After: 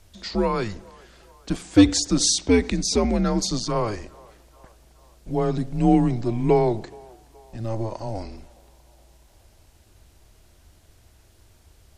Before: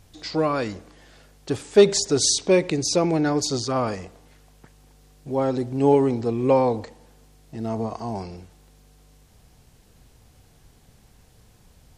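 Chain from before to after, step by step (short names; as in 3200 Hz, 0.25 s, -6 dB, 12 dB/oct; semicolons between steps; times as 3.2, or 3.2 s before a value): frequency shift -110 Hz; narrowing echo 0.423 s, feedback 61%, band-pass 880 Hz, level -23 dB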